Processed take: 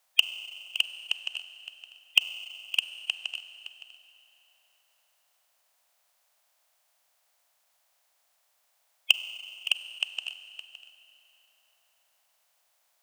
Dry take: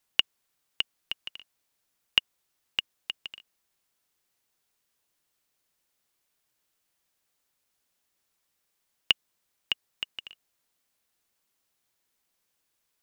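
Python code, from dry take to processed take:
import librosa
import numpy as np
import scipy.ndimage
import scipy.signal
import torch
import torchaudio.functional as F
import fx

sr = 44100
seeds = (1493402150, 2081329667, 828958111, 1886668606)

p1 = fx.spec_quant(x, sr, step_db=30)
p2 = 10.0 ** (-19.0 / 20.0) * (np.abs((p1 / 10.0 ** (-19.0 / 20.0) + 3.0) % 4.0 - 2.0) - 1.0)
p3 = p1 + (p2 * librosa.db_to_amplitude(-5.0))
p4 = fx.low_shelf_res(p3, sr, hz=470.0, db=-11.5, q=3.0)
p5 = p4 + fx.echo_single(p4, sr, ms=565, db=-14.0, dry=0)
p6 = fx.rev_schroeder(p5, sr, rt60_s=2.9, comb_ms=32, drr_db=11.5)
y = p6 * librosa.db_to_amplitude(2.0)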